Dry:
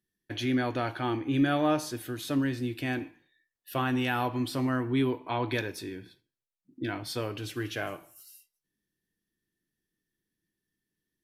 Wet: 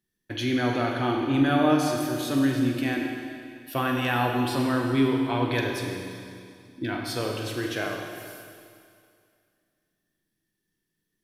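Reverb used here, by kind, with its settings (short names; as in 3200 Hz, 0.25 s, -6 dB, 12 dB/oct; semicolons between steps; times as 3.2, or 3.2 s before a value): Schroeder reverb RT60 2.3 s, combs from 33 ms, DRR 1.5 dB; gain +2.5 dB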